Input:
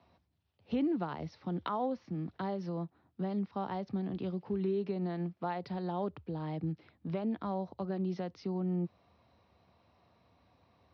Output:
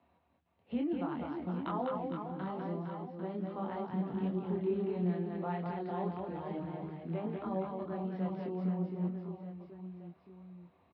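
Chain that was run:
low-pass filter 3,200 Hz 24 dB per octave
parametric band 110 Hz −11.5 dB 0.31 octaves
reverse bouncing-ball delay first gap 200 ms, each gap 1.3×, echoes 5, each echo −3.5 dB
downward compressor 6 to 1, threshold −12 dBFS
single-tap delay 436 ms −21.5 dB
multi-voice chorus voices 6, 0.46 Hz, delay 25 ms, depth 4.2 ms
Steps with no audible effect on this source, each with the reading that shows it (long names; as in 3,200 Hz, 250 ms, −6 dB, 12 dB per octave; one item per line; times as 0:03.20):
downward compressor, threshold −12 dBFS: peak of its input −19.5 dBFS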